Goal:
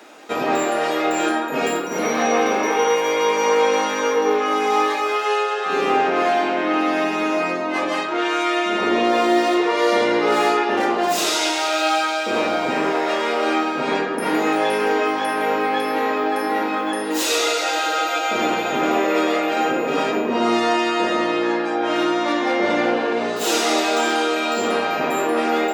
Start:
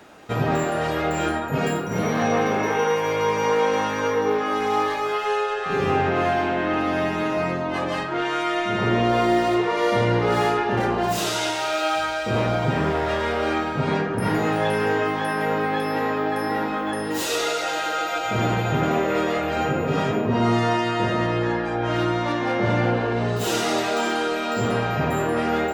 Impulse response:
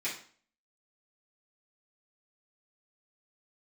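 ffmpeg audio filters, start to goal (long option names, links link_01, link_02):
-filter_complex "[0:a]highpass=frequency=250:width=0.5412,highpass=frequency=250:width=1.3066,asplit=2[link_01][link_02];[link_02]equalizer=frequency=5500:width=0.43:gain=11[link_03];[1:a]atrim=start_sample=2205[link_04];[link_03][link_04]afir=irnorm=-1:irlink=0,volume=-16dB[link_05];[link_01][link_05]amix=inputs=2:normalize=0,volume=3dB"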